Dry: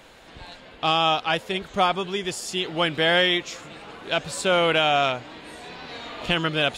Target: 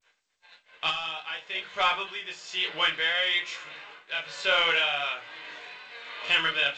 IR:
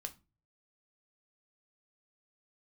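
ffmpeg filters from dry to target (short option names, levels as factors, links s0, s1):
-filter_complex "[0:a]bandpass=f=2200:t=q:w=1.2:csg=0,flanger=delay=18.5:depth=7.8:speed=0.57,acontrast=29,tremolo=f=1.1:d=0.58,asoftclip=type=tanh:threshold=0.2,agate=range=0.002:threshold=0.00316:ratio=16:detection=peak,asplit=3[s0][s1][s2];[s0]afade=t=out:st=0.89:d=0.02[s3];[s1]acompressor=threshold=0.0224:ratio=4,afade=t=in:st=0.89:d=0.02,afade=t=out:st=1.52:d=0.02[s4];[s2]afade=t=in:st=1.52:d=0.02[s5];[s3][s4][s5]amix=inputs=3:normalize=0[s6];[1:a]atrim=start_sample=2205[s7];[s6][s7]afir=irnorm=-1:irlink=0,volume=1.88" -ar 16000 -c:a g722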